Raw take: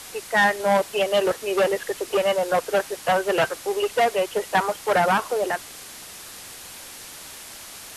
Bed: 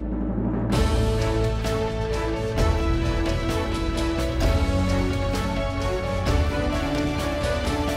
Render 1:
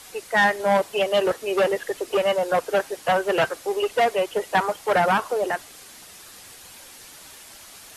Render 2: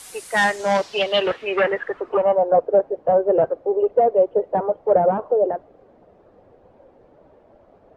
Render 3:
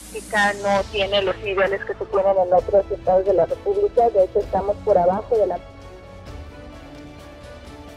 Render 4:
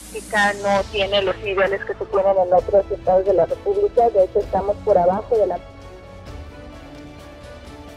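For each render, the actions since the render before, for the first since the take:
noise reduction 6 dB, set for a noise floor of -41 dBFS
short-mantissa float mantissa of 4-bit; low-pass sweep 9.9 kHz -> 560 Hz, 0.33–2.66 s
add bed -15 dB
trim +1 dB

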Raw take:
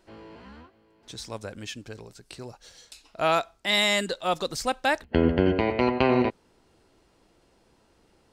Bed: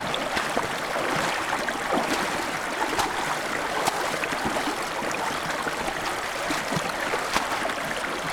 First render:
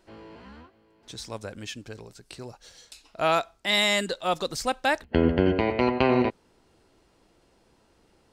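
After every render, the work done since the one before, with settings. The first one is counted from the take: no audible change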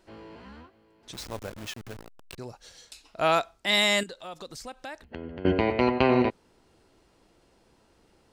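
1.13–2.38 s: send-on-delta sampling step -36.5 dBFS; 4.03–5.45 s: compression 2.5:1, threshold -43 dBFS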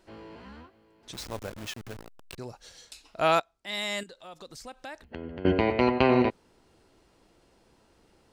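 3.40–5.28 s: fade in, from -17.5 dB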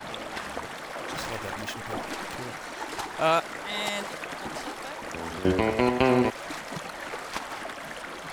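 add bed -9.5 dB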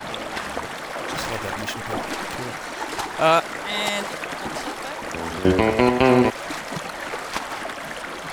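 trim +6 dB; peak limiter -2 dBFS, peak gain reduction 2 dB

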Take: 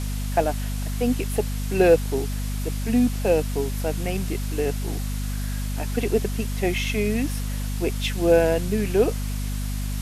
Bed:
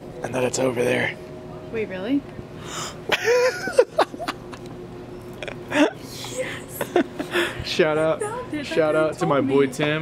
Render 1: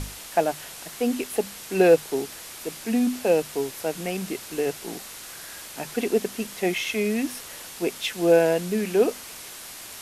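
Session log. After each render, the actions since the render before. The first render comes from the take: hum notches 50/100/150/200/250 Hz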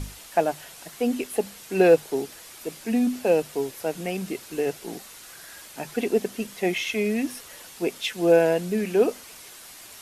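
noise reduction 6 dB, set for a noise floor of -41 dBFS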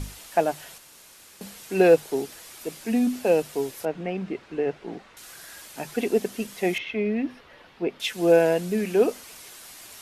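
0.78–1.41 s: room tone; 3.85–5.17 s: low-pass 2.3 kHz; 6.78–8.00 s: distance through air 350 m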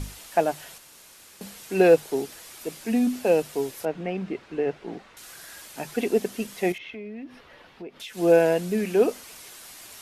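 6.72–8.17 s: compression 4:1, threshold -37 dBFS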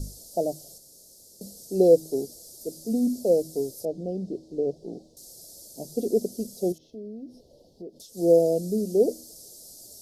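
elliptic band-stop 590–4800 Hz, stop band 50 dB; de-hum 79.79 Hz, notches 4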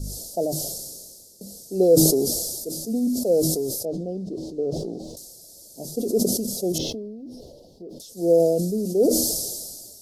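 decay stretcher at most 32 dB/s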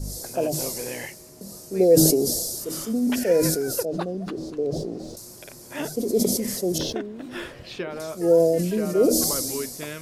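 add bed -13 dB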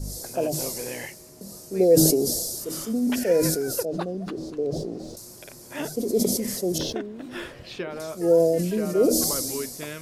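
trim -1 dB

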